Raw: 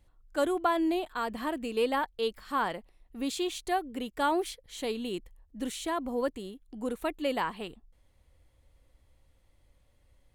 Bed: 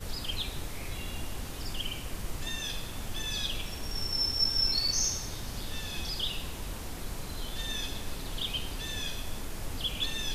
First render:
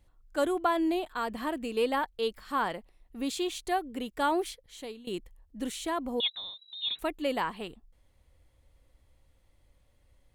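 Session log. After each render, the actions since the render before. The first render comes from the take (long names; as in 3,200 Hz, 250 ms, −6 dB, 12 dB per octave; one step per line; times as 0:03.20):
0:04.43–0:05.07: fade out, to −17.5 dB
0:06.20–0:06.99: voice inversion scrambler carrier 3,900 Hz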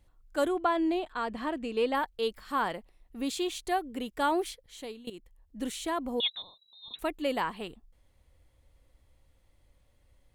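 0:00.48–0:01.95: high-frequency loss of the air 64 metres
0:05.10–0:05.59: fade in, from −14 dB
0:06.42–0:06.94: elliptic band-stop filter 1,100–4,400 Hz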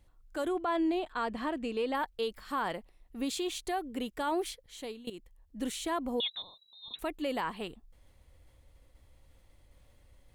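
brickwall limiter −24 dBFS, peak gain reduction 8.5 dB
reversed playback
upward compression, threshold −52 dBFS
reversed playback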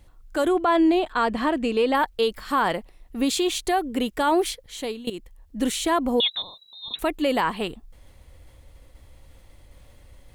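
level +11 dB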